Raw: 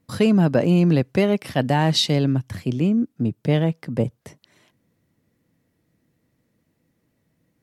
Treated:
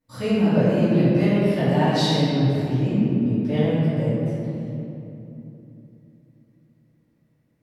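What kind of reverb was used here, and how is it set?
shoebox room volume 130 m³, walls hard, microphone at 2.5 m; gain -17 dB

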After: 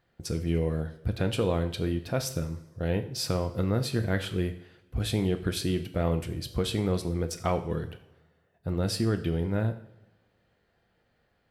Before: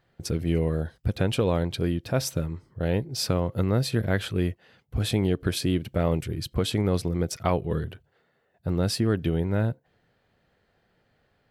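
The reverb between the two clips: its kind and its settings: two-slope reverb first 0.56 s, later 1.6 s, from -18 dB, DRR 7 dB; gain -3.5 dB

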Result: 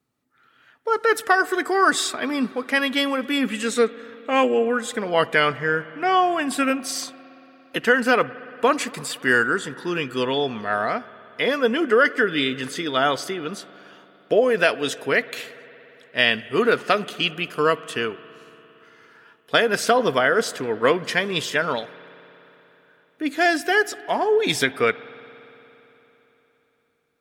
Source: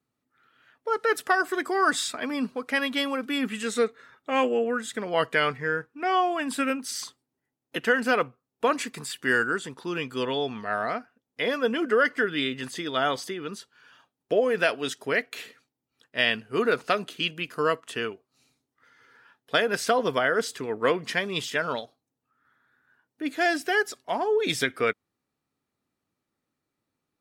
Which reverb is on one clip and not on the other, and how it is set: spring tank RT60 3.7 s, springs 57 ms, chirp 40 ms, DRR 17.5 dB; gain +5 dB

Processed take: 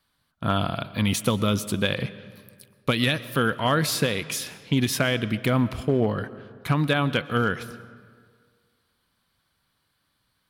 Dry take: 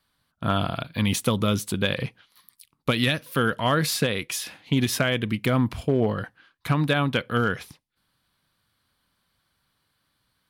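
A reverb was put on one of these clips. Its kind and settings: digital reverb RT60 1.9 s, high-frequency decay 0.6×, pre-delay 85 ms, DRR 16 dB

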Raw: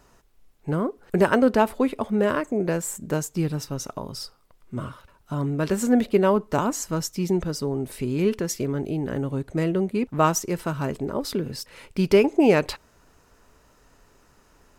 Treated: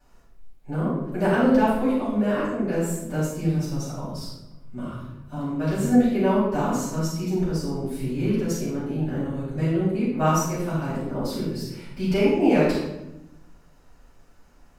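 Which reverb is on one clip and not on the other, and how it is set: shoebox room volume 320 m³, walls mixed, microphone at 7.8 m; gain -18 dB

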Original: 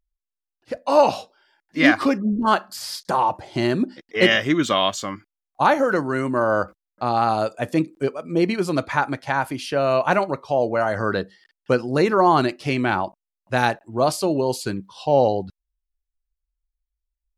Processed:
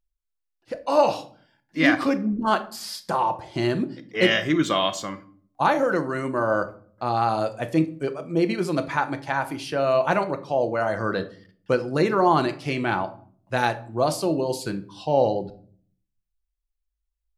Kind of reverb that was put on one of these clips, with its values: shoebox room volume 540 m³, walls furnished, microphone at 0.74 m; gain -3.5 dB

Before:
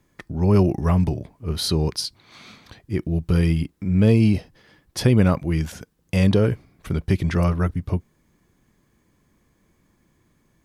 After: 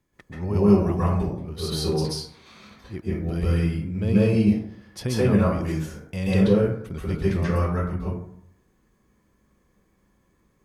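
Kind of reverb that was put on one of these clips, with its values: plate-style reverb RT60 0.68 s, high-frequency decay 0.45×, pre-delay 0.12 s, DRR -8.5 dB; gain -10.5 dB

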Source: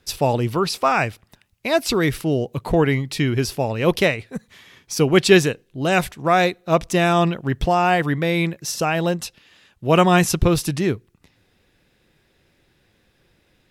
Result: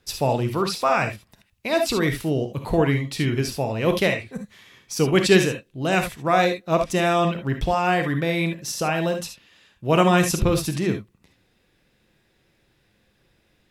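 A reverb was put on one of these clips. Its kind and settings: non-linear reverb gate 90 ms rising, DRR 5.5 dB; gain -3.5 dB

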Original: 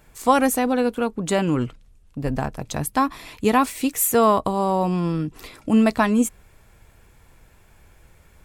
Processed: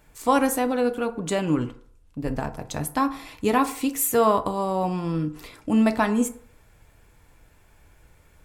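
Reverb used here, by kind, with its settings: FDN reverb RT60 0.56 s, low-frequency decay 0.75×, high-frequency decay 0.5×, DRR 8 dB; gain -3.5 dB

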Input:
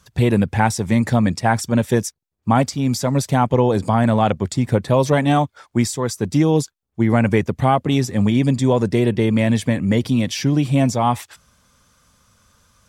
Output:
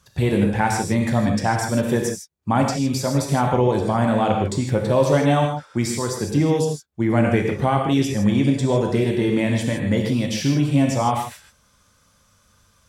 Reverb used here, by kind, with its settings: non-linear reverb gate 0.18 s flat, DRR 1 dB; gain -4 dB

